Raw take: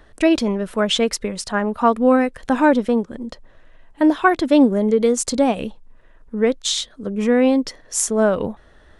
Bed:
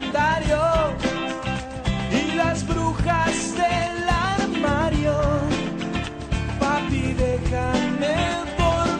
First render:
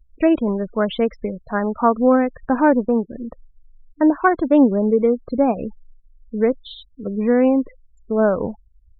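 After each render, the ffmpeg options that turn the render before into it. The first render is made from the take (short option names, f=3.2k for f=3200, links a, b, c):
-af "lowpass=1.7k,afftfilt=real='re*gte(hypot(re,im),0.0282)':imag='im*gte(hypot(re,im),0.0282)':win_size=1024:overlap=0.75"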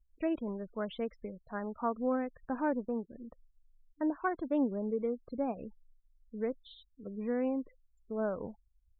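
-af "volume=-17dB"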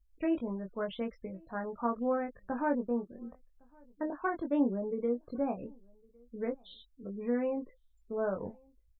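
-filter_complex "[0:a]asplit=2[a][b];[b]adelay=21,volume=-4dB[c];[a][c]amix=inputs=2:normalize=0,asplit=2[d][e];[e]adelay=1108,volume=-29dB,highshelf=f=4k:g=-24.9[f];[d][f]amix=inputs=2:normalize=0"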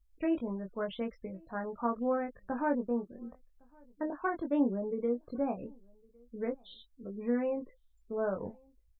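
-filter_complex "[0:a]asettb=1/sr,asplit=3[a][b][c];[a]atrim=end=6.654[d];[b]atrim=start=6.65:end=7.61,asetpts=PTS-STARTPTS,afade=t=in:d=0.004:c=qsin,afade=t=out:st=0.956:d=0.004:c=qsin,asplit=2[e][f];[f]adelay=13,volume=-11.5dB[g];[e][g]amix=inputs=2:normalize=0,atrim=end_sample=42336[h];[c]atrim=start=7.606[i];[d][h]acrossfade=d=0.004:c1=hsin:c2=qsin[j];[j][i]acrossfade=d=0.004:c1=qsin:c2=hsin"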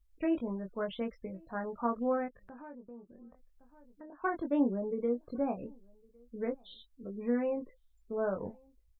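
-filter_complex "[0:a]asettb=1/sr,asplit=3[a][b][c];[a]atrim=end=2.284[d];[b]atrim=start=2.28:end=4.24,asetpts=PTS-STARTPTS,afade=t=in:d=0.004:c=qsin,afade=t=out:st=1.956:d=0.004:c=qsin,acompressor=threshold=-54dB:ratio=2.5:attack=3.2:release=140:knee=1:detection=peak[e];[c]atrim=start=4.236[f];[d][e]acrossfade=d=0.004:c1=hsin:c2=qsin[g];[g][f]acrossfade=d=0.004:c1=qsin:c2=hsin"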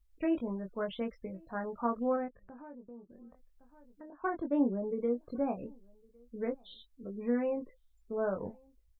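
-filter_complex "[0:a]asettb=1/sr,asplit=3[a][b][c];[a]atrim=end=2.164[d];[b]atrim=start=2.16:end=3.1,asetpts=PTS-STARTPTS,afade=t=in:d=0.004:c=qsin,afade=t=out:st=0.936:d=0.004:c=qsin,lowpass=f=1.2k:p=1[e];[c]atrim=start=3.096[f];[d][e]acrossfade=d=0.004:c1=hsin:c2=qsin[g];[g][f]acrossfade=d=0.004:c1=qsin:c2=hsin,asettb=1/sr,asplit=3[h][i][j];[h]atrim=end=4.104[k];[i]atrim=start=4.1:end=4.84,asetpts=PTS-STARTPTS,afade=t=in:d=0.004:c=qsin,afade=t=out:st=0.736:d=0.004:c=qsin,lowpass=f=1.6k:p=1[l];[j]atrim=start=4.836[m];[k][l]acrossfade=d=0.004:c1=hsin:c2=qsin[n];[n][m]acrossfade=d=0.004:c1=qsin:c2=hsin"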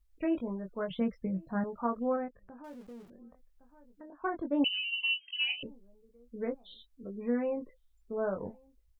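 -filter_complex "[0:a]asettb=1/sr,asplit=3[a][b][c];[a]atrim=end=0.904[d];[b]atrim=start=0.9:end=1.64,asetpts=PTS-STARTPTS,afade=t=in:d=0.004:c=qsin,afade=t=out:st=0.736:d=0.004:c=qsin,equalizer=f=170:w=1.5:g=13.5[e];[c]atrim=start=1.636[f];[d][e]acrossfade=d=0.004:c1=hsin:c2=qsin[g];[g][f]acrossfade=d=0.004:c1=qsin:c2=hsin,asettb=1/sr,asplit=3[h][i][j];[h]atrim=end=2.644[k];[i]atrim=start=2.64:end=3.1,asetpts=PTS-STARTPTS,afade=t=in:d=0.004:c=qsin,afade=t=out:st=0.456:d=0.004:c=qsin,aeval=exprs='val(0)+0.5*0.00224*sgn(val(0))':c=same[l];[j]atrim=start=3.096[m];[k][l]acrossfade=d=0.004:c1=hsin:c2=qsin[n];[n][m]acrossfade=d=0.004:c1=qsin:c2=hsin,asettb=1/sr,asplit=3[o][p][q];[o]atrim=end=4.644[r];[p]atrim=start=4.64:end=5.63,asetpts=PTS-STARTPTS,afade=t=in:d=0.004:c=qsin,afade=t=out:st=0.986:d=0.004:c=qsin,lowpass=f=2.7k:t=q:w=0.5098,lowpass=f=2.7k:t=q:w=0.6013,lowpass=f=2.7k:t=q:w=0.9,lowpass=f=2.7k:t=q:w=2.563,afreqshift=-3200[s];[q]atrim=start=5.626[t];[r][s]acrossfade=d=0.004:c1=hsin:c2=qsin[u];[u][t]acrossfade=d=0.004:c1=qsin:c2=hsin"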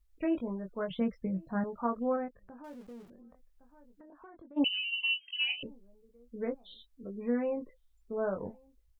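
-filter_complex "[0:a]asplit=3[a][b][c];[a]afade=t=out:st=3.12:d=0.02[d];[b]acompressor=threshold=-51dB:ratio=6:attack=3.2:release=140:knee=1:detection=peak,afade=t=in:st=3.12:d=0.02,afade=t=out:st=4.56:d=0.02[e];[c]afade=t=in:st=4.56:d=0.02[f];[d][e][f]amix=inputs=3:normalize=0"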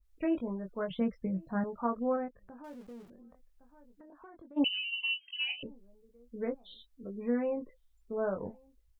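-af "adynamicequalizer=threshold=0.00398:dfrequency=1900:dqfactor=0.7:tfrequency=1900:tqfactor=0.7:attack=5:release=100:ratio=0.375:range=2:mode=cutabove:tftype=highshelf"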